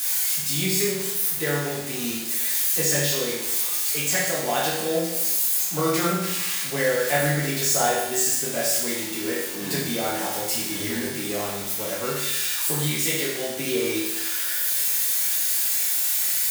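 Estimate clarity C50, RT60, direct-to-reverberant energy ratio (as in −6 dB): 1.0 dB, 0.95 s, −7.0 dB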